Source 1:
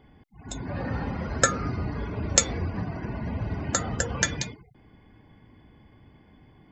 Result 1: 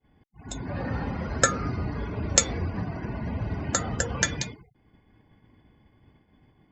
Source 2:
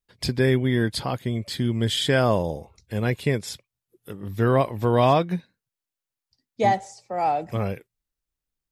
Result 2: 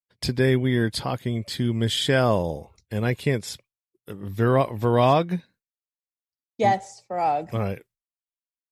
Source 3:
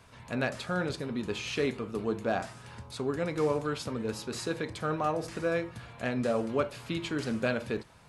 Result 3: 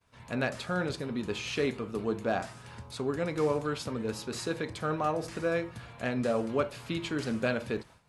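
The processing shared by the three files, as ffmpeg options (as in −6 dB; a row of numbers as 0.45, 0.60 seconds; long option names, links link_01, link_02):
-af "agate=range=-33dB:threshold=-48dB:ratio=3:detection=peak"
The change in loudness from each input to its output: 0.0, 0.0, 0.0 LU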